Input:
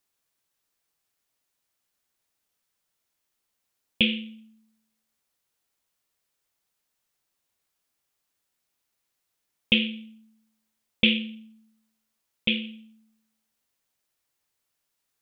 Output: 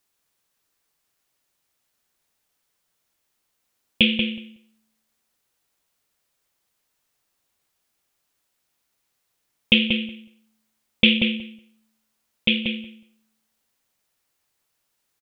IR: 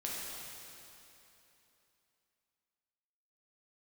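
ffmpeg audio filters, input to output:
-filter_complex "[0:a]asplit=2[s0][s1];[s1]adelay=185,lowpass=f=2400:p=1,volume=0.631,asplit=2[s2][s3];[s3]adelay=185,lowpass=f=2400:p=1,volume=0.15,asplit=2[s4][s5];[s5]adelay=185,lowpass=f=2400:p=1,volume=0.15[s6];[s0][s2][s4][s6]amix=inputs=4:normalize=0,volume=1.68"

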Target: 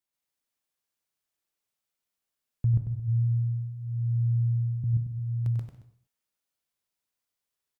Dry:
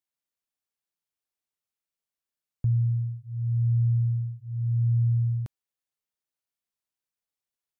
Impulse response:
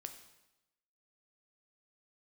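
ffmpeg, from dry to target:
-filter_complex "[0:a]asettb=1/sr,asplit=3[s0][s1][s2];[s0]atrim=end=2.944[s3];[s1]atrim=start=2.94:end=4.84,asetpts=PTS-STARTPTS,afade=t=in:d=0.004:c=qsin,afade=t=out:st=1.896:d=0.004:c=qsin,equalizer=f=110:t=o:w=0.22:g=7[s4];[s2]atrim=start=4.836[s5];[s3][s4]acrossfade=d=0.004:c1=hsin:c2=qsin[s6];[s6][s5]acrossfade=d=0.004:c1=qsin:c2=hsin,aecho=1:1:95|152|223:0.398|0.133|0.112,asplit=2[s7][s8];[1:a]atrim=start_sample=2205,afade=t=out:st=0.3:d=0.01,atrim=end_sample=13671,adelay=132[s9];[s8][s9]afir=irnorm=-1:irlink=0,volume=1.88[s10];[s7][s10]amix=inputs=2:normalize=0"

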